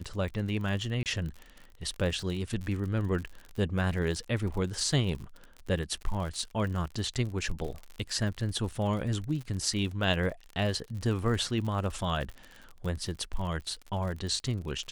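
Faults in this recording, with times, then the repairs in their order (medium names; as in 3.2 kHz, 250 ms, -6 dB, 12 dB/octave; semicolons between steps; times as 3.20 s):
crackle 56 per s -36 dBFS
1.03–1.06 s: dropout 28 ms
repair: de-click; interpolate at 1.03 s, 28 ms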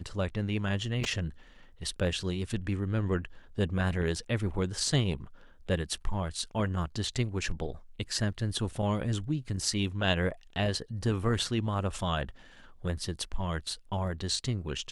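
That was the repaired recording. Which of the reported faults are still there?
nothing left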